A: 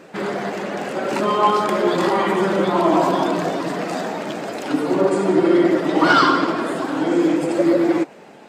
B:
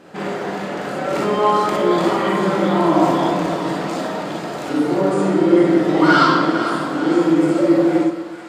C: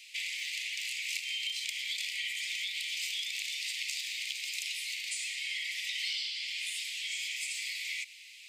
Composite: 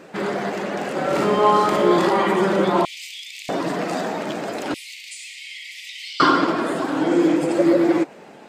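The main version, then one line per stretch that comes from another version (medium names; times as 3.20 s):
A
0.98–1.99 s: from B
2.85–3.49 s: from C
4.74–6.20 s: from C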